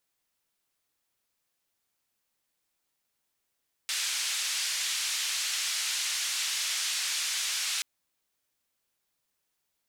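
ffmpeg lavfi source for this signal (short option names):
-f lavfi -i "anoisesrc=c=white:d=3.93:r=44100:seed=1,highpass=f=2100,lowpass=f=6900,volume=-19.7dB"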